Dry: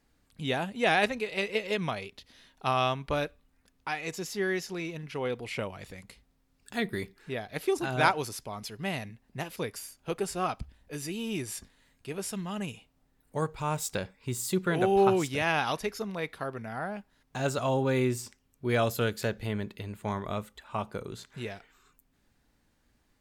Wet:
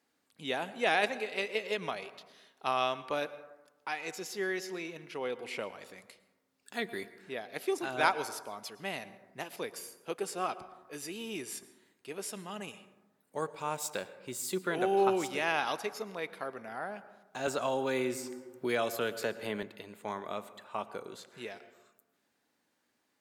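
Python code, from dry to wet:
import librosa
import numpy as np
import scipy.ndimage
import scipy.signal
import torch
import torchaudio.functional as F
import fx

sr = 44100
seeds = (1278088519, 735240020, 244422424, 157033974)

y = scipy.signal.sosfilt(scipy.signal.butter(2, 290.0, 'highpass', fs=sr, output='sos'), x)
y = fx.rev_plate(y, sr, seeds[0], rt60_s=1.1, hf_ratio=0.35, predelay_ms=95, drr_db=14.5)
y = fx.band_squash(y, sr, depth_pct=70, at=(17.47, 19.63))
y = F.gain(torch.from_numpy(y), -3.0).numpy()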